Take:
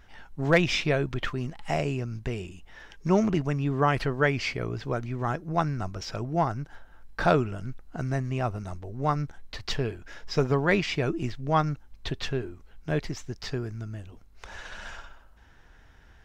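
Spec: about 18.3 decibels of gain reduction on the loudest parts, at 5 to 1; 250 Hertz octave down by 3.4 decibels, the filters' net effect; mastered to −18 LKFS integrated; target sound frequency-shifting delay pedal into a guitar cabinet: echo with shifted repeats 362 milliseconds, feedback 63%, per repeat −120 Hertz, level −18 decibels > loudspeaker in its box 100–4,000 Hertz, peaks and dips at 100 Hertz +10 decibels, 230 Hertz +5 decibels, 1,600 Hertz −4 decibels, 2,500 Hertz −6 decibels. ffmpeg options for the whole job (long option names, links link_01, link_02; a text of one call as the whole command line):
ffmpeg -i in.wav -filter_complex "[0:a]equalizer=frequency=250:width_type=o:gain=-8,acompressor=threshold=-39dB:ratio=5,asplit=7[link_01][link_02][link_03][link_04][link_05][link_06][link_07];[link_02]adelay=362,afreqshift=-120,volume=-18dB[link_08];[link_03]adelay=724,afreqshift=-240,volume=-22dB[link_09];[link_04]adelay=1086,afreqshift=-360,volume=-26dB[link_10];[link_05]adelay=1448,afreqshift=-480,volume=-30dB[link_11];[link_06]adelay=1810,afreqshift=-600,volume=-34.1dB[link_12];[link_07]adelay=2172,afreqshift=-720,volume=-38.1dB[link_13];[link_01][link_08][link_09][link_10][link_11][link_12][link_13]amix=inputs=7:normalize=0,highpass=100,equalizer=frequency=100:width_type=q:width=4:gain=10,equalizer=frequency=230:width_type=q:width=4:gain=5,equalizer=frequency=1600:width_type=q:width=4:gain=-4,equalizer=frequency=2500:width_type=q:width=4:gain=-6,lowpass=frequency=4000:width=0.5412,lowpass=frequency=4000:width=1.3066,volume=25dB" out.wav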